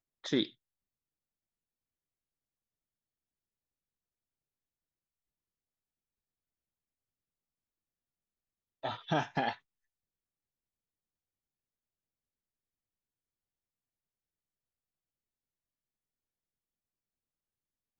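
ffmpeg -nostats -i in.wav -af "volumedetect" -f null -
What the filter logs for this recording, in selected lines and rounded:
mean_volume: -45.8 dB
max_volume: -16.7 dB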